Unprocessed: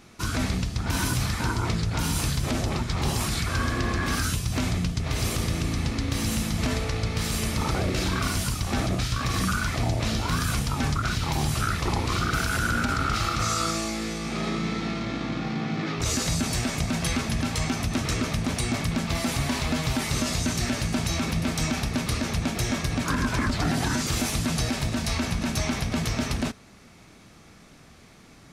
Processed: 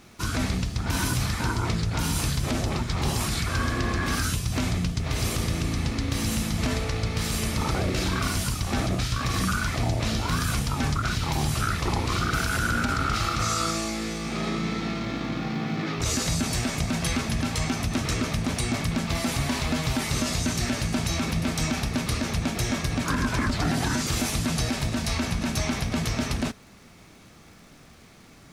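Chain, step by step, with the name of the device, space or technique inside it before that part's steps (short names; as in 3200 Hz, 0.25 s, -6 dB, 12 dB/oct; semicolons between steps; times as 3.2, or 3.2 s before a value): vinyl LP (crackle -45 dBFS; pink noise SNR 37 dB)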